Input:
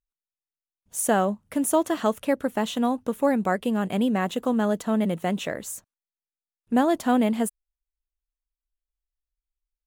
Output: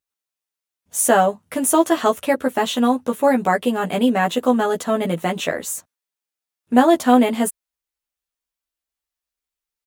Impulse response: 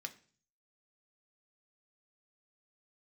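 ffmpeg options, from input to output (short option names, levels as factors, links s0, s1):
-filter_complex "[0:a]highpass=51,lowshelf=f=200:g=-9,asplit=2[s0][s1];[s1]adelay=12,volume=0.794[s2];[s0][s2]amix=inputs=2:normalize=0,volume=2"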